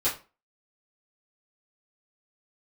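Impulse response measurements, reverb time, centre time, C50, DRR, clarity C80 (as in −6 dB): 0.35 s, 25 ms, 9.5 dB, −10.5 dB, 16.0 dB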